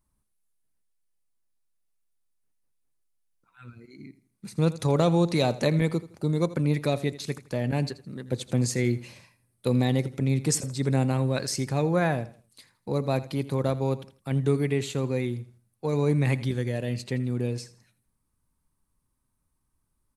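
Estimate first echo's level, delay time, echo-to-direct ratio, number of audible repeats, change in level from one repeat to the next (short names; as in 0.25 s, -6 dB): -17.0 dB, 82 ms, -16.5 dB, 2, -10.5 dB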